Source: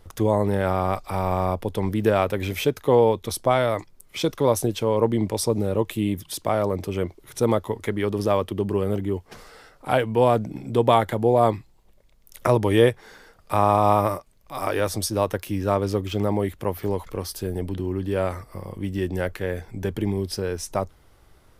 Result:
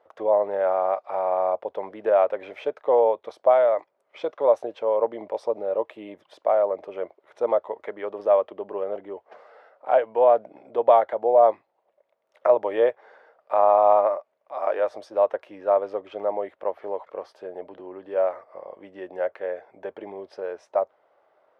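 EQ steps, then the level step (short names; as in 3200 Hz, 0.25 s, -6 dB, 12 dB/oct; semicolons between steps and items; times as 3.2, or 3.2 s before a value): resonant high-pass 600 Hz, resonance Q 3.5; LPF 1900 Hz 12 dB/oct; -5.5 dB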